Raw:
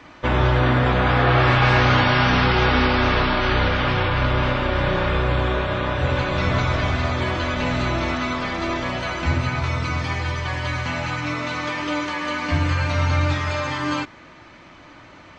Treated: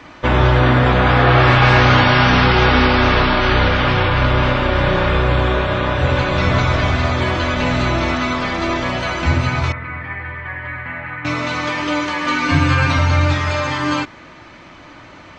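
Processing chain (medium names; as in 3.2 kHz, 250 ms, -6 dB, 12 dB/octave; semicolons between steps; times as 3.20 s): 9.72–11.25 s: four-pole ladder low-pass 2.1 kHz, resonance 65%; 12.26–12.99 s: comb 7.5 ms, depth 90%; trim +5 dB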